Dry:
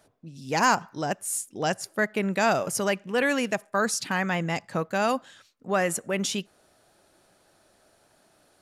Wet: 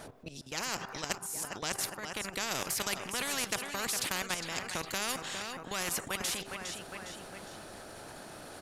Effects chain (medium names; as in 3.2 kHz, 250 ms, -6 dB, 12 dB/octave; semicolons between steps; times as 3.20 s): treble shelf 2.6 kHz -4 dB; de-hum 391.9 Hz, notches 3; transient shaper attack +2 dB, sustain +6 dB; level held to a coarse grid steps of 13 dB; 0.41–2.51 s: tremolo saw up 1.3 Hz, depth 95%; feedback delay 408 ms, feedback 42%, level -19 dB; spectrum-flattening compressor 4:1